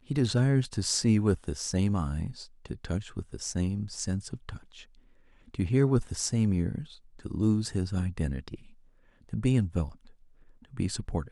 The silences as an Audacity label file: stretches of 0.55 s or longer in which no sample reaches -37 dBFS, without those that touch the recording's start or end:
4.800000	5.540000	silence
8.550000	9.330000	silence
9.920000	10.740000	silence